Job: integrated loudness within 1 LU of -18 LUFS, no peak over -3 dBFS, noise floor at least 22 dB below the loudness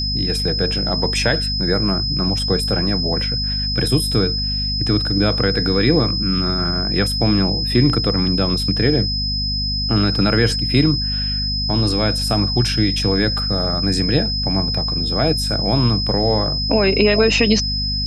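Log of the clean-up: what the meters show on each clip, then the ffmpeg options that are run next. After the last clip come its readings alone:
hum 50 Hz; harmonics up to 250 Hz; hum level -22 dBFS; steady tone 5100 Hz; tone level -21 dBFS; loudness -17.5 LUFS; peak -1.5 dBFS; loudness target -18.0 LUFS
-> -af "bandreject=f=50:t=h:w=6,bandreject=f=100:t=h:w=6,bandreject=f=150:t=h:w=6,bandreject=f=200:t=h:w=6,bandreject=f=250:t=h:w=6"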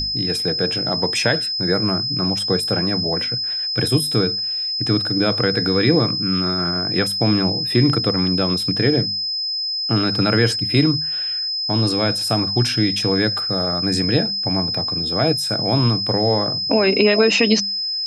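hum none; steady tone 5100 Hz; tone level -21 dBFS
-> -af "bandreject=f=5.1k:w=30"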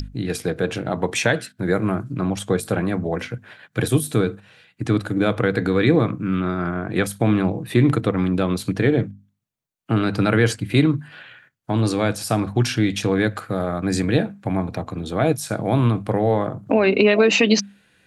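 steady tone none; loudness -21.0 LUFS; peak -2.0 dBFS; loudness target -18.0 LUFS
-> -af "volume=3dB,alimiter=limit=-3dB:level=0:latency=1"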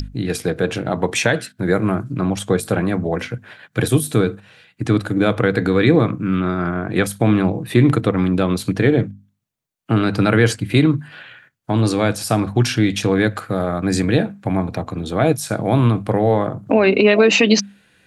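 loudness -18.0 LUFS; peak -3.0 dBFS; noise floor -62 dBFS

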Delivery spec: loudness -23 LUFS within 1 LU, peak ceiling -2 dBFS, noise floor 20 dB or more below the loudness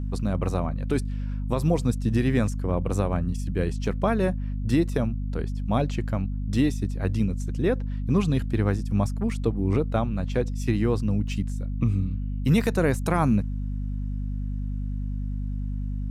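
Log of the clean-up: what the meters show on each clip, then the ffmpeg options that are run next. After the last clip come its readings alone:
hum 50 Hz; harmonics up to 250 Hz; hum level -26 dBFS; loudness -26.5 LUFS; peak -10.5 dBFS; loudness target -23.0 LUFS
-> -af "bandreject=f=50:t=h:w=6,bandreject=f=100:t=h:w=6,bandreject=f=150:t=h:w=6,bandreject=f=200:t=h:w=6,bandreject=f=250:t=h:w=6"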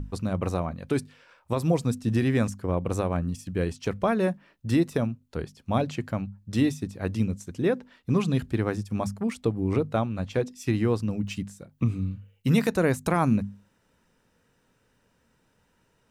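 hum none; loudness -27.5 LUFS; peak -11.5 dBFS; loudness target -23.0 LUFS
-> -af "volume=4.5dB"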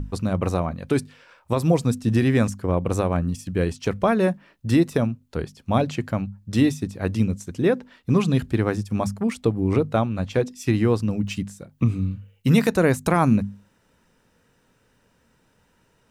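loudness -23.0 LUFS; peak -7.0 dBFS; noise floor -64 dBFS

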